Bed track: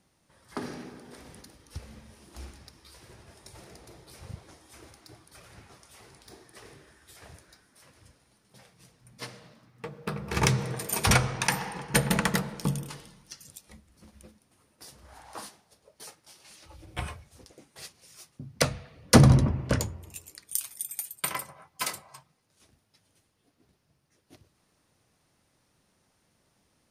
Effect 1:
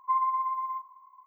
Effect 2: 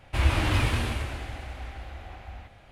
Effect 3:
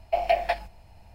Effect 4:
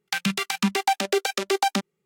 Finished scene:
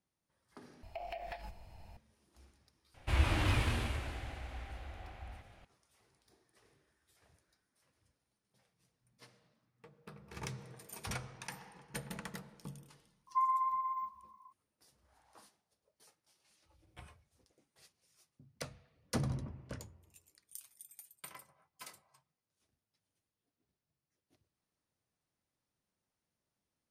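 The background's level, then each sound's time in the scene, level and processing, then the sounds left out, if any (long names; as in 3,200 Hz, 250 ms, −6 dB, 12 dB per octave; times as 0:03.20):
bed track −19.5 dB
0:00.83: overwrite with 3 −3 dB + downward compressor 10 to 1, threshold −37 dBFS
0:02.94: mix in 2 −7 dB
0:13.27: mix in 1 −5 dB
not used: 4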